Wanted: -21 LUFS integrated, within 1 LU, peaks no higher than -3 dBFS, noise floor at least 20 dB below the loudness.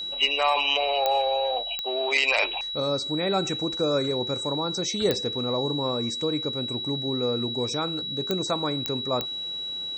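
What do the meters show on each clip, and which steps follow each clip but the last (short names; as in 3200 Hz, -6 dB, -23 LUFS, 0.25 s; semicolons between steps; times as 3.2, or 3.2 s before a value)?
clicks 6; steady tone 3900 Hz; tone level -30 dBFS; loudness -25.5 LUFS; peak -8.0 dBFS; loudness target -21.0 LUFS
-> de-click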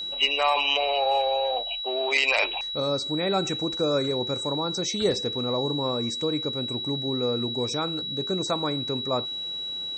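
clicks 0; steady tone 3900 Hz; tone level -30 dBFS
-> notch 3900 Hz, Q 30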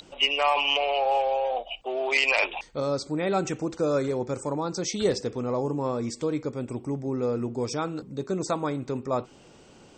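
steady tone none; loudness -27.0 LUFS; peak -10.0 dBFS; loudness target -21.0 LUFS
-> gain +6 dB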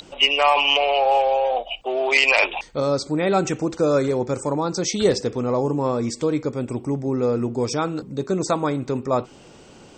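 loudness -21.0 LUFS; peak -4.0 dBFS; noise floor -47 dBFS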